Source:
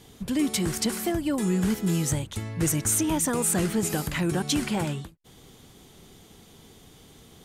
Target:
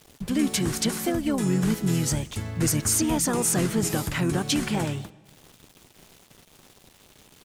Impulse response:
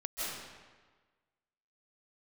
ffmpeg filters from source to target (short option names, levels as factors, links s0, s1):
-filter_complex "[0:a]aeval=exprs='val(0)*gte(abs(val(0)),0.00473)':c=same,asplit=2[s0][s1];[s1]asetrate=33038,aresample=44100,atempo=1.33484,volume=0.501[s2];[s0][s2]amix=inputs=2:normalize=0,asplit=2[s3][s4];[1:a]atrim=start_sample=2205[s5];[s4][s5]afir=irnorm=-1:irlink=0,volume=0.0501[s6];[s3][s6]amix=inputs=2:normalize=0"